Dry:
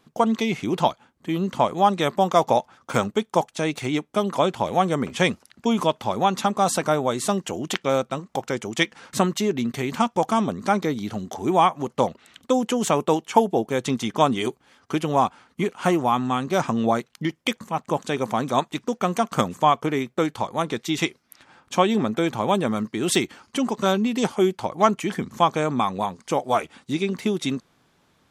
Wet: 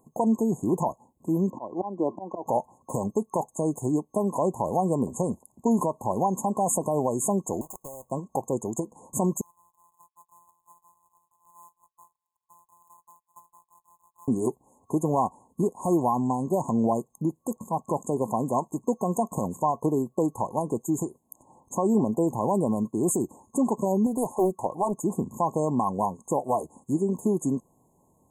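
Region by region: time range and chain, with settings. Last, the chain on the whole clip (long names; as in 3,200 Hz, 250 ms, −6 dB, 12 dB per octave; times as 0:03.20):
0:01.50–0:02.46: volume swells 338 ms + loudspeaker in its box 120–4,200 Hz, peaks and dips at 150 Hz −9 dB, 330 Hz +7 dB, 2,200 Hz −7 dB
0:07.61–0:08.11: each half-wave held at its own peak + parametric band 210 Hz −14.5 dB 2.3 octaves + downward compressor 8 to 1, threshold −35 dBFS
0:09.41–0:14.28: samples sorted by size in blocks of 256 samples + inverse Chebyshev high-pass filter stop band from 640 Hz, stop band 50 dB + high-frequency loss of the air 460 metres
0:24.06–0:24.98: low-shelf EQ 230 Hz −5.5 dB + highs frequency-modulated by the lows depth 0.48 ms
whole clip: high-shelf EQ 6,900 Hz +3.5 dB; brickwall limiter −13.5 dBFS; brick-wall band-stop 1,100–6,400 Hz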